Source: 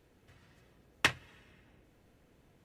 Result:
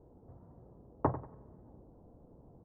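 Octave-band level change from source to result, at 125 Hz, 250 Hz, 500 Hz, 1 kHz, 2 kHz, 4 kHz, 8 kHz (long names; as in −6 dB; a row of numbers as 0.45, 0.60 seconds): +8.0 dB, +7.5 dB, +7.5 dB, +3.0 dB, −23.5 dB, below −40 dB, below −30 dB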